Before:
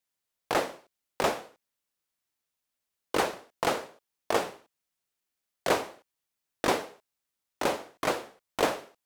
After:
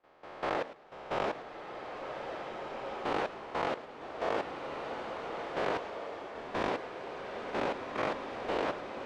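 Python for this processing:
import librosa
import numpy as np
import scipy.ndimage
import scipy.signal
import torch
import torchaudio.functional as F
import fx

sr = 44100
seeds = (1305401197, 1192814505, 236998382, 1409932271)

y = fx.spec_swells(x, sr, rise_s=0.77)
y = scipy.signal.sosfilt(scipy.signal.butter(2, 3100.0, 'lowpass', fs=sr, output='sos'), y)
y = fx.level_steps(y, sr, step_db=15)
y = fx.echo_feedback(y, sr, ms=106, feedback_pct=43, wet_db=-22.5)
y = fx.rev_bloom(y, sr, seeds[0], attack_ms=1780, drr_db=3.0)
y = F.gain(torch.from_numpy(y), -2.0).numpy()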